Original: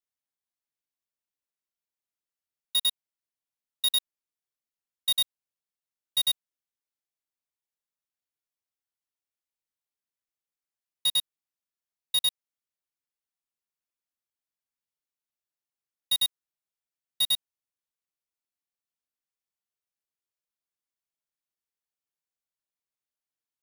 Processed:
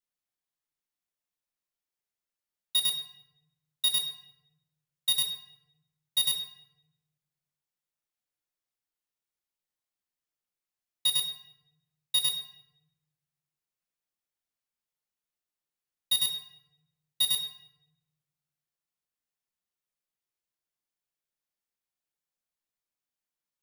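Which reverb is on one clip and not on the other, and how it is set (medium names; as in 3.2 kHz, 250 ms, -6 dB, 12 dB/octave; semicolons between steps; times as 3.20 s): simulated room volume 350 m³, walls mixed, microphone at 0.91 m; trim -1.5 dB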